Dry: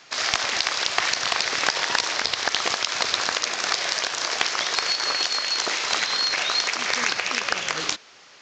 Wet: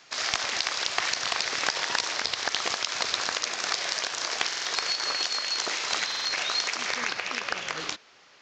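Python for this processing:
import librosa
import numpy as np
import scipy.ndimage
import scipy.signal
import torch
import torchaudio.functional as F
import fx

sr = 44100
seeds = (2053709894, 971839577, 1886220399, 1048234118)

y = fx.high_shelf(x, sr, hz=7000.0, db=fx.steps((0.0, 3.0), (6.92, -9.0)))
y = fx.buffer_glitch(y, sr, at_s=(4.47, 6.07), block=2048, repeats=3)
y = F.gain(torch.from_numpy(y), -5.0).numpy()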